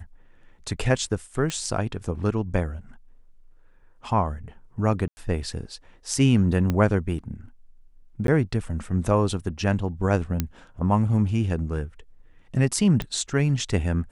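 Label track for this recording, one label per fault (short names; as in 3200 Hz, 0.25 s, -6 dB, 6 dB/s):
1.500000	1.500000	pop -14 dBFS
5.080000	5.170000	gap 90 ms
6.700000	6.700000	pop -12 dBFS
8.270000	8.280000	gap 12 ms
10.400000	10.400000	pop -9 dBFS
13.020000	13.020000	pop -15 dBFS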